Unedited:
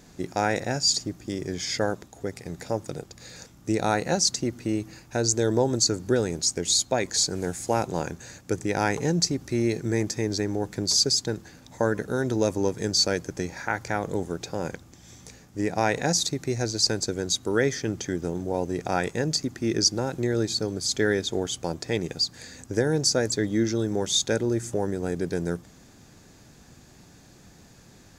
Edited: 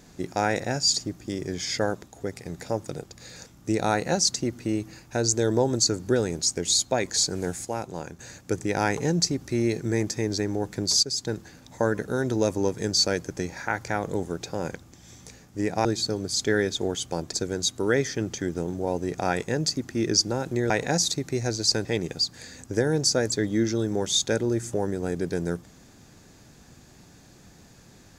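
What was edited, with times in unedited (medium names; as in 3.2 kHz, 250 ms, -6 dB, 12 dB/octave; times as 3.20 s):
7.65–8.19 s: gain -6.5 dB
11.03–11.33 s: fade in, from -12 dB
15.85–17.00 s: swap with 20.37–21.85 s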